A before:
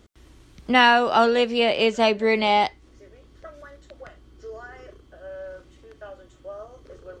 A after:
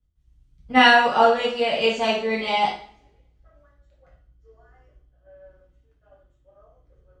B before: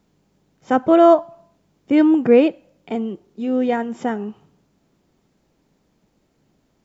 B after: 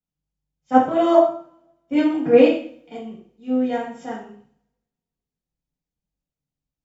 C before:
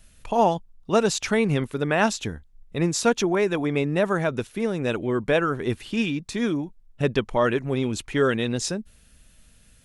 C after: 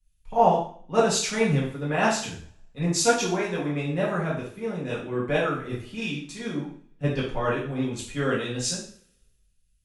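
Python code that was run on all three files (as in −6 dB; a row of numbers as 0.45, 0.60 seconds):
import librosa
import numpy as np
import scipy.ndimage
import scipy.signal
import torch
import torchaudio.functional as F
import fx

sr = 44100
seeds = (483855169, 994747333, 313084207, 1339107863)

y = fx.rev_double_slope(x, sr, seeds[0], early_s=0.61, late_s=2.6, knee_db=-28, drr_db=-6.0)
y = fx.band_widen(y, sr, depth_pct=70)
y = y * librosa.db_to_amplitude(-9.5)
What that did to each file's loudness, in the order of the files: +0.5, −1.0, −2.0 LU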